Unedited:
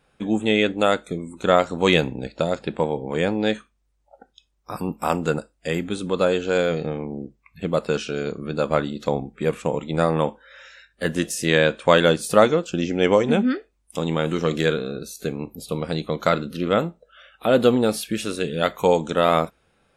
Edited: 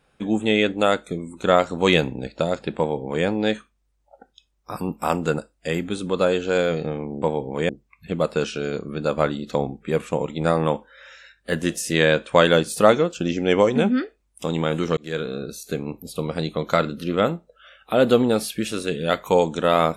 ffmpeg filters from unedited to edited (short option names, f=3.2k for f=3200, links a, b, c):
-filter_complex "[0:a]asplit=4[a][b][c][d];[a]atrim=end=7.222[e];[b]atrim=start=2.778:end=3.252[f];[c]atrim=start=7.218:end=14.5,asetpts=PTS-STARTPTS,afade=t=out:st=7.278:d=0.004:c=hsin[g];[d]atrim=start=14.5,asetpts=PTS-STARTPTS,afade=t=in:d=0.38[h];[e][f]acrossfade=d=0.004:c1=hsin:c2=hsin[i];[g][h]concat=n=2:v=0:a=1[j];[i][j]acrossfade=d=0.004:c1=hsin:c2=hsin"